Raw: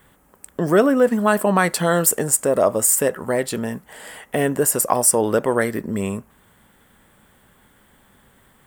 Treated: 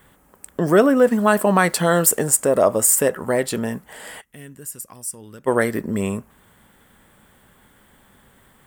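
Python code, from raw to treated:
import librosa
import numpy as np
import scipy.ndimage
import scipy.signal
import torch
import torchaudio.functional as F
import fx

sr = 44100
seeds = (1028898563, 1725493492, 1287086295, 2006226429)

y = fx.dmg_noise_colour(x, sr, seeds[0], colour='white', level_db=-57.0, at=(0.95, 2.31), fade=0.02)
y = fx.tone_stack(y, sr, knobs='6-0-2', at=(4.2, 5.46), fade=0.02)
y = y * 10.0 ** (1.0 / 20.0)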